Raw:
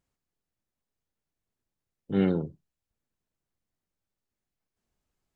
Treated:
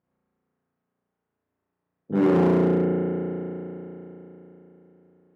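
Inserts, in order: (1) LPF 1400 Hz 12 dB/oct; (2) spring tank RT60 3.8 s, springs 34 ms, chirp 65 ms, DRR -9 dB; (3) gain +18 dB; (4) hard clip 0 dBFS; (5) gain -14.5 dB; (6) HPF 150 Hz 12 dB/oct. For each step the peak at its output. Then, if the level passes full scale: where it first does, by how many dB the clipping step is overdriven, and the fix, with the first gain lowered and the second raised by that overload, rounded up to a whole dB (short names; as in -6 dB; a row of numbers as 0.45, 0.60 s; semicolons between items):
-13.0, -9.5, +8.5, 0.0, -14.5, -9.5 dBFS; step 3, 8.5 dB; step 3 +9 dB, step 5 -5.5 dB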